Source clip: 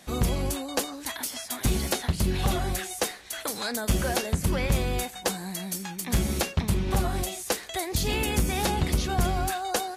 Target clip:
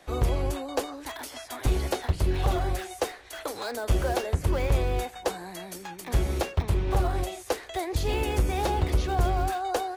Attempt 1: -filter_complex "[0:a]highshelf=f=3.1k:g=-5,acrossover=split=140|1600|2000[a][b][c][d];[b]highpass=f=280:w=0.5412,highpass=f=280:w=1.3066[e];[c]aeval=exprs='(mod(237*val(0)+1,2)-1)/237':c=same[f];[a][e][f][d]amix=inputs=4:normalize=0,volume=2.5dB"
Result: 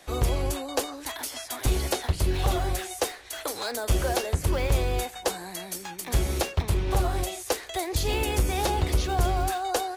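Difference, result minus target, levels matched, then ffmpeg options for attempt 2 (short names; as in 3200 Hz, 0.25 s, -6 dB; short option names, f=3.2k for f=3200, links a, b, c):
8000 Hz band +6.5 dB
-filter_complex "[0:a]highshelf=f=3.1k:g=-13.5,acrossover=split=140|1600|2000[a][b][c][d];[b]highpass=f=280:w=0.5412,highpass=f=280:w=1.3066[e];[c]aeval=exprs='(mod(237*val(0)+1,2)-1)/237':c=same[f];[a][e][f][d]amix=inputs=4:normalize=0,volume=2.5dB"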